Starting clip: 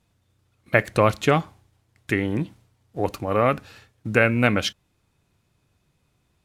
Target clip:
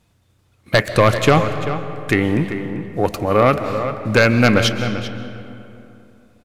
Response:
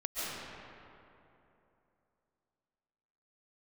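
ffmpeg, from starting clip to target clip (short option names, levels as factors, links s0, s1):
-filter_complex "[0:a]aeval=exprs='0.376*(abs(mod(val(0)/0.376+3,4)-2)-1)':c=same,acontrast=78,asplit=2[s0][s1];[s1]adelay=390.7,volume=0.316,highshelf=f=4000:g=-8.79[s2];[s0][s2]amix=inputs=2:normalize=0,asplit=2[s3][s4];[1:a]atrim=start_sample=2205[s5];[s4][s5]afir=irnorm=-1:irlink=0,volume=0.2[s6];[s3][s6]amix=inputs=2:normalize=0,volume=0.891"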